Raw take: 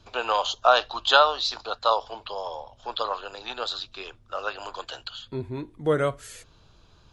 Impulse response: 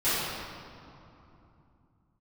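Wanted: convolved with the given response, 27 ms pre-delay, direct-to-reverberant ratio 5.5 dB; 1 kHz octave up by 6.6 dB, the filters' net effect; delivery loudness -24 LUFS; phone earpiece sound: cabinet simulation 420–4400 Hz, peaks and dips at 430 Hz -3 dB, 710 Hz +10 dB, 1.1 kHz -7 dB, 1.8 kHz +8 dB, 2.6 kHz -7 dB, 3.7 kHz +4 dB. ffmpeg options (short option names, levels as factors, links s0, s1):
-filter_complex "[0:a]equalizer=f=1000:t=o:g=6.5,asplit=2[s0][s1];[1:a]atrim=start_sample=2205,adelay=27[s2];[s1][s2]afir=irnorm=-1:irlink=0,volume=0.106[s3];[s0][s3]amix=inputs=2:normalize=0,highpass=420,equalizer=f=430:t=q:w=4:g=-3,equalizer=f=710:t=q:w=4:g=10,equalizer=f=1100:t=q:w=4:g=-7,equalizer=f=1800:t=q:w=4:g=8,equalizer=f=2600:t=q:w=4:g=-7,equalizer=f=3700:t=q:w=4:g=4,lowpass=f=4400:w=0.5412,lowpass=f=4400:w=1.3066,volume=0.631"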